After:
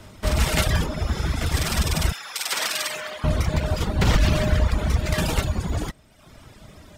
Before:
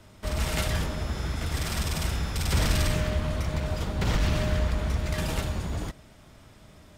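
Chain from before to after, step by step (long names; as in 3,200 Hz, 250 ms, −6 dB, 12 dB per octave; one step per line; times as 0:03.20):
0:02.12–0:03.24: Bessel high-pass filter 1,000 Hz, order 2
reverb reduction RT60 1 s
level +8.5 dB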